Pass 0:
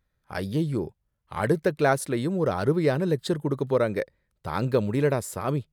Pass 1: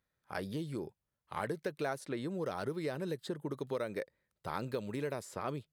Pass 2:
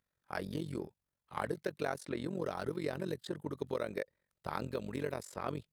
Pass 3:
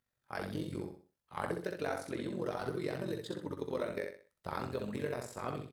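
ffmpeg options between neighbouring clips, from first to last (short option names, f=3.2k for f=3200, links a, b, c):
-filter_complex "[0:a]acrossover=split=2100|6400[a][b][c];[a]acompressor=threshold=-29dB:ratio=4[d];[b]acompressor=threshold=-46dB:ratio=4[e];[c]acompressor=threshold=-55dB:ratio=4[f];[d][e][f]amix=inputs=3:normalize=0,highpass=f=200:p=1,volume=-4.5dB"
-filter_complex "[0:a]tremolo=f=45:d=0.857,asplit=2[a][b];[b]aeval=exprs='sgn(val(0))*max(abs(val(0))-0.00178,0)':c=same,volume=-11.5dB[c];[a][c]amix=inputs=2:normalize=0,volume=1.5dB"
-filter_complex "[0:a]flanger=delay=8:depth=4:regen=57:speed=0.37:shape=sinusoidal,asplit=2[a][b];[b]aecho=0:1:63|126|189|252:0.596|0.203|0.0689|0.0234[c];[a][c]amix=inputs=2:normalize=0,volume=3dB"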